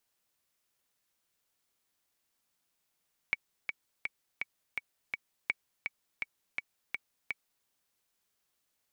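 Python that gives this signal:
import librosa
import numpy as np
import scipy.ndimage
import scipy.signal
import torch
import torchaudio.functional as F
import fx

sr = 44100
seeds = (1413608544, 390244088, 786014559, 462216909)

y = fx.click_track(sr, bpm=166, beats=6, bars=2, hz=2260.0, accent_db=5.5, level_db=-15.0)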